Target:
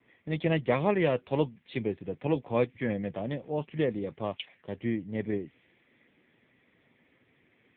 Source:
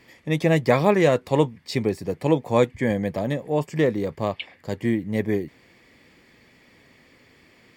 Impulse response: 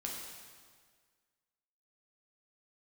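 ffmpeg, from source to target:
-af "adynamicequalizer=threshold=0.00562:dfrequency=3100:dqfactor=1.4:tfrequency=3100:tqfactor=1.4:attack=5:release=100:ratio=0.375:range=3.5:mode=boostabove:tftype=bell,volume=-7.5dB" -ar 8000 -c:a libopencore_amrnb -b:a 6700

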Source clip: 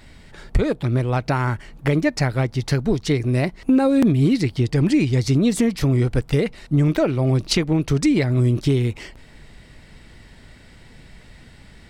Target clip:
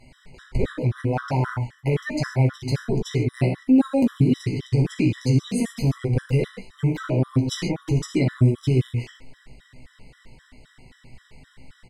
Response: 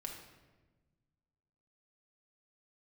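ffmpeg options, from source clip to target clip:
-filter_complex "[0:a]asplit=2[a][b];[b]adelay=16,volume=-5dB[c];[a][c]amix=inputs=2:normalize=0[d];[1:a]atrim=start_sample=2205,afade=t=out:st=0.14:d=0.01,atrim=end_sample=6615,asetrate=27342,aresample=44100[e];[d][e]afir=irnorm=-1:irlink=0,afftfilt=real='re*gt(sin(2*PI*3.8*pts/sr)*(1-2*mod(floor(b*sr/1024/1000),2)),0)':imag='im*gt(sin(2*PI*3.8*pts/sr)*(1-2*mod(floor(b*sr/1024/1000),2)),0)':win_size=1024:overlap=0.75,volume=-3dB"

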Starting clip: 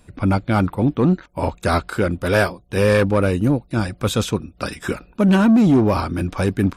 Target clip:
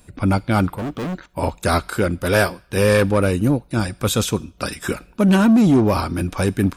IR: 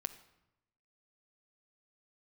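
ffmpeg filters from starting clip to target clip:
-filter_complex "[0:a]asettb=1/sr,asplit=3[a][b][c];[a]atrim=end=0.774[d];[b]atrim=start=0.77:end=1.26,asetpts=PTS-STARTPTS,afade=t=in:d=0.004:c=qsin,afade=t=out:st=0.486:d=0.004:c=qsin,volume=23.5dB,asoftclip=hard,volume=-23.5dB[e];[c]atrim=start=1.256[f];[d][e]acrossfade=d=0.004:c1=hsin:c2=qsin[g];[g][f]acrossfade=d=0.004:c1=qsin:c2=hsin,asplit=2[h][i];[i]aderivative[j];[1:a]atrim=start_sample=2205,asetrate=52920,aresample=44100[k];[j][k]afir=irnorm=-1:irlink=0,volume=4dB[l];[h][l]amix=inputs=2:normalize=0"

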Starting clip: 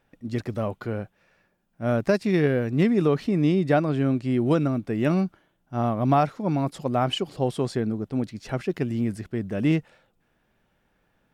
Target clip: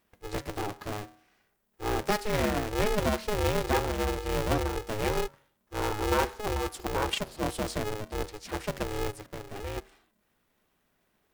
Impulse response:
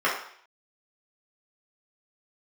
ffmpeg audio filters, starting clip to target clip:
-filter_complex "[0:a]crystalizer=i=2:c=0,bandreject=f=87.57:t=h:w=4,bandreject=f=175.14:t=h:w=4,bandreject=f=262.71:t=h:w=4,bandreject=f=350.28:t=h:w=4,bandreject=f=437.85:t=h:w=4,bandreject=f=525.42:t=h:w=4,bandreject=f=612.99:t=h:w=4,bandreject=f=700.56:t=h:w=4,bandreject=f=788.13:t=h:w=4,bandreject=f=875.7:t=h:w=4,bandreject=f=963.27:t=h:w=4,bandreject=f=1.05084k:t=h:w=4,bandreject=f=1.13841k:t=h:w=4,bandreject=f=1.22598k:t=h:w=4,bandreject=f=1.31355k:t=h:w=4,bandreject=f=1.40112k:t=h:w=4,bandreject=f=1.48869k:t=h:w=4,bandreject=f=1.57626k:t=h:w=4,bandreject=f=1.66383k:t=h:w=4,bandreject=f=1.7514k:t=h:w=4,bandreject=f=1.83897k:t=h:w=4,bandreject=f=1.92654k:t=h:w=4,asplit=3[a][b][c];[a]afade=t=out:st=9.1:d=0.02[d];[b]acompressor=threshold=-33dB:ratio=2.5,afade=t=in:st=9.1:d=0.02,afade=t=out:st=9.76:d=0.02[e];[c]afade=t=in:st=9.76:d=0.02[f];[d][e][f]amix=inputs=3:normalize=0,aeval=exprs='val(0)*sgn(sin(2*PI*210*n/s))':c=same,volume=-6dB"

